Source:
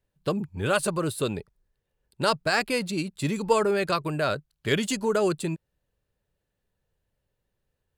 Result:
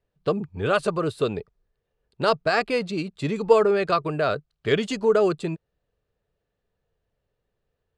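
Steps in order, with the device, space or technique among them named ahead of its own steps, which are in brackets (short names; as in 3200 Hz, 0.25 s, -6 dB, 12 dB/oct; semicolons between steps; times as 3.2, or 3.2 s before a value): inside a cardboard box (LPF 4900 Hz 12 dB/oct; small resonant body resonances 450/680/1200 Hz, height 7 dB, ringing for 30 ms)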